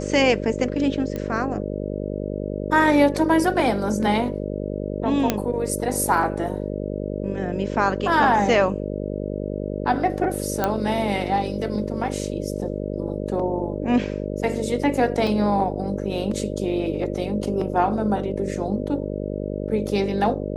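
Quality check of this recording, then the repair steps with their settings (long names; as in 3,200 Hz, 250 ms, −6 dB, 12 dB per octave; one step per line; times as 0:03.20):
mains buzz 50 Hz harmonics 12 −28 dBFS
0:01.16: click −16 dBFS
0:05.30: click −4 dBFS
0:10.64: click −7 dBFS
0:15.27: drop-out 3.3 ms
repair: click removal
hum removal 50 Hz, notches 12
repair the gap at 0:15.27, 3.3 ms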